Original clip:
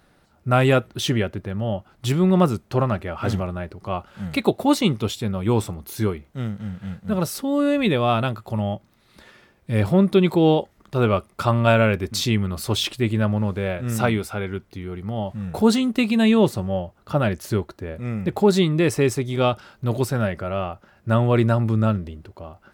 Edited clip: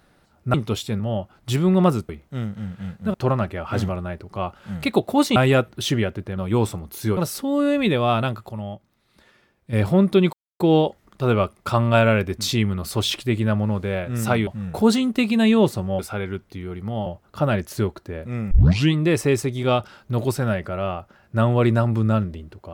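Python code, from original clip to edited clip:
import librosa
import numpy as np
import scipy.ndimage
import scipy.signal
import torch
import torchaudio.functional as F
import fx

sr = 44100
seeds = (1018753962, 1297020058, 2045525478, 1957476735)

y = fx.edit(x, sr, fx.swap(start_s=0.54, length_s=1.02, other_s=4.87, other_length_s=0.46),
    fx.move(start_s=6.12, length_s=1.05, to_s=2.65),
    fx.clip_gain(start_s=8.49, length_s=1.24, db=-7.0),
    fx.insert_silence(at_s=10.33, length_s=0.27),
    fx.move(start_s=14.2, length_s=1.07, to_s=16.79),
    fx.tape_start(start_s=18.24, length_s=0.43), tone=tone)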